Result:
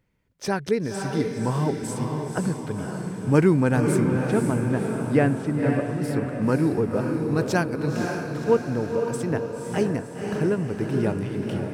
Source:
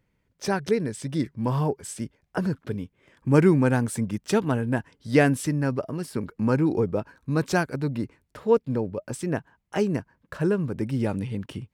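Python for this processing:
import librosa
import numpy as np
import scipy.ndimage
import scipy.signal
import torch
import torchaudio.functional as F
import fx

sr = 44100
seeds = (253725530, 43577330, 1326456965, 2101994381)

y = fx.spacing_loss(x, sr, db_at_10k=27, at=(4.07, 6.02))
y = fx.echo_diffused(y, sr, ms=529, feedback_pct=55, wet_db=-4)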